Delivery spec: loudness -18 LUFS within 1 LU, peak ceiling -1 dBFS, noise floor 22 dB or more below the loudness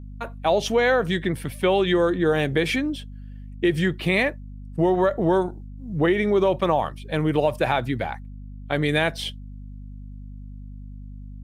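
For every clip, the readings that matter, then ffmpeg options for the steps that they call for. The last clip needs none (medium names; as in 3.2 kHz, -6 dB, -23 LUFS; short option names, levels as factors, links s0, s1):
hum 50 Hz; highest harmonic 250 Hz; hum level -36 dBFS; loudness -22.5 LUFS; peak level -8.0 dBFS; loudness target -18.0 LUFS
-> -af "bandreject=f=50:t=h:w=4,bandreject=f=100:t=h:w=4,bandreject=f=150:t=h:w=4,bandreject=f=200:t=h:w=4,bandreject=f=250:t=h:w=4"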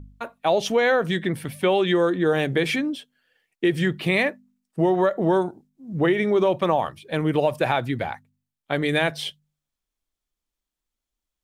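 hum not found; loudness -23.0 LUFS; peak level -8.0 dBFS; loudness target -18.0 LUFS
-> -af "volume=1.78"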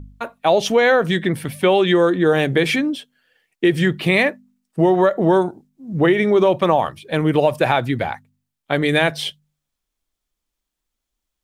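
loudness -18.0 LUFS; peak level -3.0 dBFS; noise floor -81 dBFS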